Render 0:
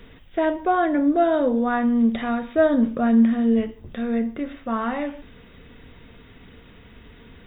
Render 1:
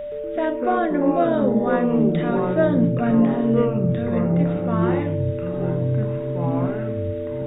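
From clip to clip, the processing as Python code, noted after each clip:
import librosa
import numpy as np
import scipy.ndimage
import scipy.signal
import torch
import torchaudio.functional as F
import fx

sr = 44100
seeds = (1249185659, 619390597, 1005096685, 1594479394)

y = x + 10.0 ** (-26.0 / 20.0) * np.sin(2.0 * np.pi * 590.0 * np.arange(len(x)) / sr)
y = fx.echo_pitch(y, sr, ms=119, semitones=-5, count=3, db_per_echo=-3.0)
y = F.gain(torch.from_numpy(y), -2.0).numpy()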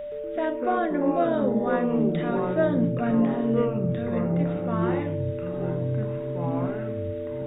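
y = fx.low_shelf(x, sr, hz=230.0, db=-3.0)
y = F.gain(torch.from_numpy(y), -3.5).numpy()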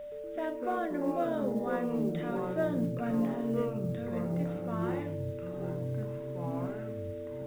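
y = fx.mod_noise(x, sr, seeds[0], snr_db=33)
y = F.gain(torch.from_numpy(y), -8.0).numpy()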